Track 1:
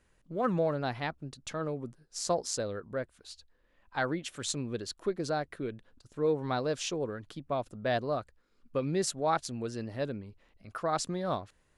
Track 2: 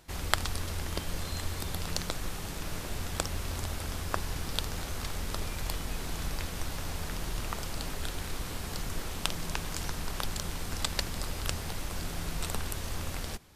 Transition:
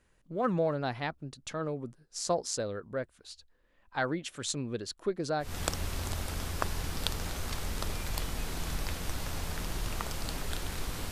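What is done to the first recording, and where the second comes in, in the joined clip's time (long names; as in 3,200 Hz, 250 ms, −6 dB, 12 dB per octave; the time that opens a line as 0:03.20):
track 1
0:05.48: continue with track 2 from 0:03.00, crossfade 0.18 s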